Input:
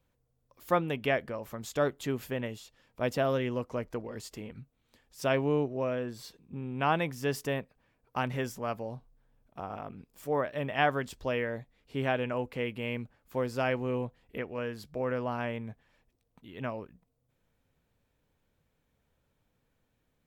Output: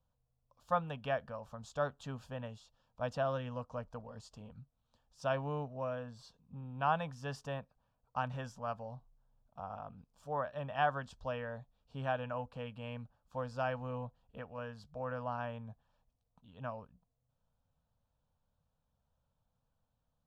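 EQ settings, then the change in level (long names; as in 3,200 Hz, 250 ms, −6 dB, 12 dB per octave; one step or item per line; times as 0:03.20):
dynamic equaliser 1,900 Hz, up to +8 dB, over −49 dBFS, Q 1.4
high-frequency loss of the air 99 metres
phaser with its sweep stopped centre 860 Hz, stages 4
−3.5 dB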